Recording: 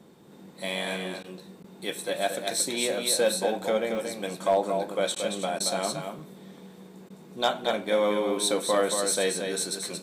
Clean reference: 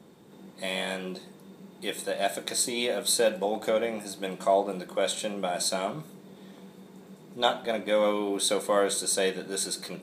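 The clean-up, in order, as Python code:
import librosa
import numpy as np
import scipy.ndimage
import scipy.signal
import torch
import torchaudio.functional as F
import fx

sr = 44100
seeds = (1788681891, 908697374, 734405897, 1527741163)

y = fx.fix_declip(x, sr, threshold_db=-14.0)
y = fx.fix_interpolate(y, sr, at_s=(1.14, 3.95, 6.19, 6.6), length_ms=1.3)
y = fx.fix_interpolate(y, sr, at_s=(1.23, 1.63, 5.15, 5.59, 7.09), length_ms=10.0)
y = fx.fix_echo_inverse(y, sr, delay_ms=228, level_db=-6.0)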